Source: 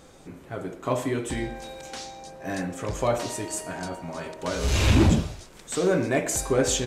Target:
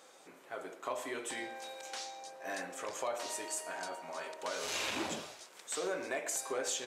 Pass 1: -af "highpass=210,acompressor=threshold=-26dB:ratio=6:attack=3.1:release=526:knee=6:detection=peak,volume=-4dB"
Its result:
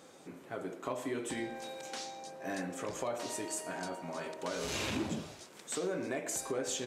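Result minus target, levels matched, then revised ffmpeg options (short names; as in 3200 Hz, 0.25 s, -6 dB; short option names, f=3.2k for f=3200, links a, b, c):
250 Hz band +7.0 dB
-af "highpass=570,acompressor=threshold=-26dB:ratio=6:attack=3.1:release=526:knee=6:detection=peak,volume=-4dB"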